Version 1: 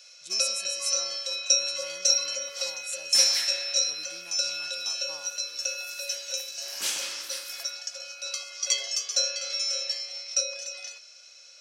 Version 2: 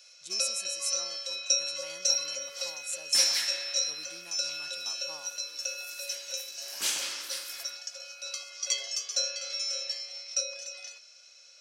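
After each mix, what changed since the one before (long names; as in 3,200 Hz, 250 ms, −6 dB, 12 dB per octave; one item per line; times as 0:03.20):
first sound −4.0 dB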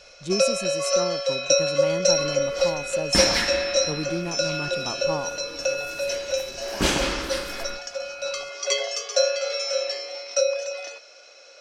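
master: remove first difference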